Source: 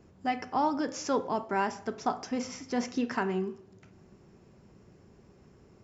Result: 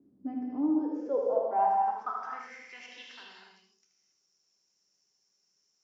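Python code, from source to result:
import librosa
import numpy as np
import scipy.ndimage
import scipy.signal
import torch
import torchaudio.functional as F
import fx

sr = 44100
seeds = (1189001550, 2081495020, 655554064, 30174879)

y = fx.filter_sweep_bandpass(x, sr, from_hz=270.0, to_hz=5700.0, start_s=0.52, end_s=3.57, q=7.3)
y = y + 10.0 ** (-6.5 / 20.0) * np.pad(y, (int(77 * sr / 1000.0), 0))[:len(y)]
y = fx.rev_gated(y, sr, seeds[0], gate_ms=300, shape='flat', drr_db=-0.5)
y = y * librosa.db_to_amplitude(4.0)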